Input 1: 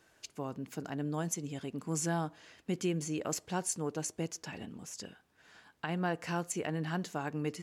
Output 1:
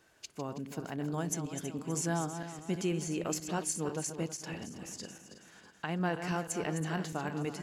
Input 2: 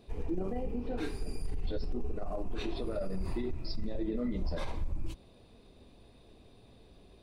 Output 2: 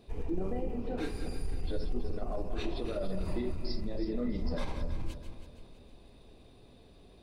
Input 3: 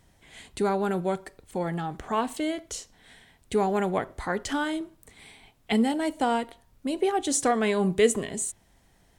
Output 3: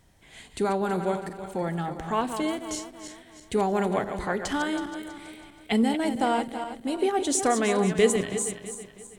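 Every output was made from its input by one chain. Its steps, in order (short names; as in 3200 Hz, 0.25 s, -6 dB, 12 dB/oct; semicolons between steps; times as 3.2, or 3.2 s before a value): regenerating reverse delay 0.162 s, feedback 62%, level -8.5 dB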